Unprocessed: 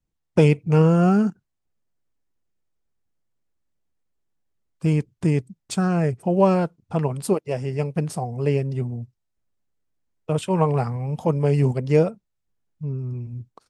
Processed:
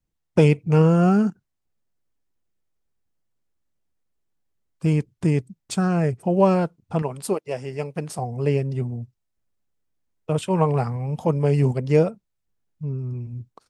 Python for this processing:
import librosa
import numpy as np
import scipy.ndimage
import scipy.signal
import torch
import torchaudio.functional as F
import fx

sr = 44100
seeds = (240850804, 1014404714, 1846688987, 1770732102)

y = fx.low_shelf(x, sr, hz=220.0, db=-10.5, at=(7.02, 8.19))